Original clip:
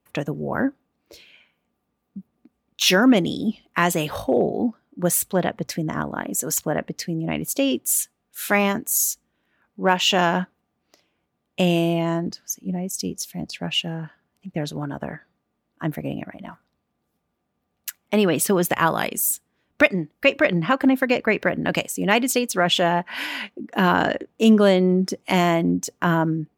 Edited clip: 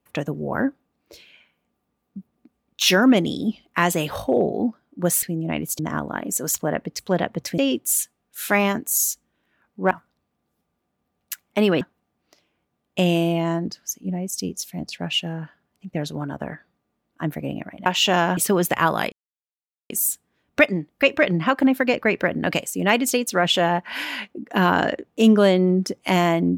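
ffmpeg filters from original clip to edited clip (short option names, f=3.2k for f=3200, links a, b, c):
-filter_complex "[0:a]asplit=10[a][b][c][d][e][f][g][h][i][j];[a]atrim=end=5.232[k];[b]atrim=start=7.018:end=7.582[l];[c]atrim=start=5.818:end=7.022[m];[d]atrim=start=5.228:end=5.822[n];[e]atrim=start=7.578:end=9.912[o];[f]atrim=start=16.468:end=18.372[p];[g]atrim=start=10.418:end=16.472[q];[h]atrim=start=9.908:end=10.422[r];[i]atrim=start=18.368:end=19.12,asetpts=PTS-STARTPTS,afade=t=out:st=0.748:d=0.004:c=hsin,apad=pad_dur=0.78[s];[j]atrim=start=19.12,asetpts=PTS-STARTPTS,afade=t=in:d=0.004:c=hsin[t];[k][l]acrossfade=d=0.004:c1=hsin:c2=hsin[u];[u][m]acrossfade=d=0.004:c1=hsin:c2=hsin[v];[v][n]acrossfade=d=0.004:c1=hsin:c2=hsin[w];[w][o]acrossfade=d=0.004:c1=hsin:c2=hsin[x];[x][p]acrossfade=d=0.004:c1=hsin:c2=hsin[y];[y][q]acrossfade=d=0.004:c1=hsin:c2=hsin[z];[z][r]acrossfade=d=0.004:c1=hsin:c2=hsin[aa];[s][t]concat=n=2:v=0:a=1[ab];[aa][ab]acrossfade=d=0.004:c1=hsin:c2=hsin"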